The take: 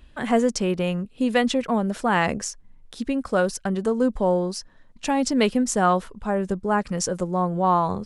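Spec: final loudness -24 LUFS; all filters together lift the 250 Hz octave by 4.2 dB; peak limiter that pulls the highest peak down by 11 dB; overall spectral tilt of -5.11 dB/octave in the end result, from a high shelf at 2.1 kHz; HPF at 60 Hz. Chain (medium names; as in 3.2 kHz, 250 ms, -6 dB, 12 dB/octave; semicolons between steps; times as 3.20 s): high-pass 60 Hz; peaking EQ 250 Hz +5 dB; treble shelf 2.1 kHz +3.5 dB; trim +0.5 dB; peak limiter -14.5 dBFS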